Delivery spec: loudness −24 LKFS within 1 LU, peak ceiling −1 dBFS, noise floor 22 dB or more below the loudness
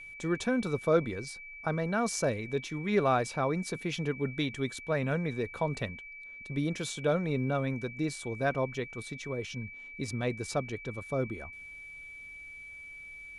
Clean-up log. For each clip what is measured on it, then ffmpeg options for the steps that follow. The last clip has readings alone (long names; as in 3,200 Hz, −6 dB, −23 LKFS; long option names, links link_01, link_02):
interfering tone 2,300 Hz; level of the tone −44 dBFS; integrated loudness −32.5 LKFS; sample peak −13.5 dBFS; target loudness −24.0 LKFS
→ -af "bandreject=frequency=2300:width=30"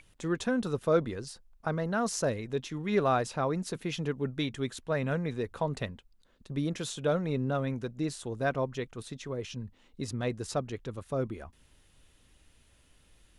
interfering tone none found; integrated loudness −32.5 LKFS; sample peak −13.5 dBFS; target loudness −24.0 LKFS
→ -af "volume=8.5dB"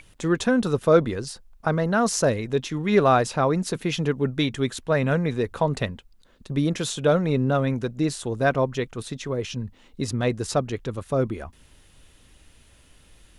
integrated loudness −24.0 LKFS; sample peak −5.0 dBFS; background noise floor −56 dBFS